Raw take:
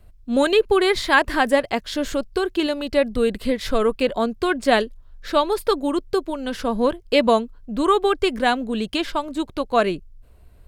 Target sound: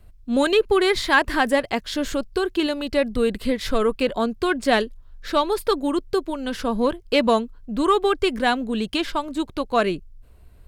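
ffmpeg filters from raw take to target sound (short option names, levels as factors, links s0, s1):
-filter_complex "[0:a]equalizer=f=610:t=o:w=0.77:g=-2.5,asplit=2[s0][s1];[s1]asoftclip=type=tanh:threshold=0.2,volume=0.398[s2];[s0][s2]amix=inputs=2:normalize=0,volume=0.75"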